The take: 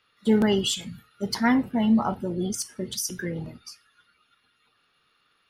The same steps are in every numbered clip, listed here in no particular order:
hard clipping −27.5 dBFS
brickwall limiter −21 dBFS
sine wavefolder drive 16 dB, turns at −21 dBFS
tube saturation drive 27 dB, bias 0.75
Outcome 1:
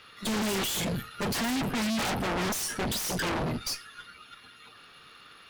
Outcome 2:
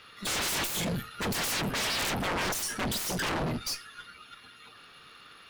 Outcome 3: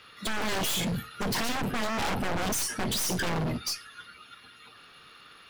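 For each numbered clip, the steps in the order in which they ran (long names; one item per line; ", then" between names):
hard clipping, then sine wavefolder, then brickwall limiter, then tube saturation
sine wavefolder, then brickwall limiter, then tube saturation, then hard clipping
brickwall limiter, then tube saturation, then sine wavefolder, then hard clipping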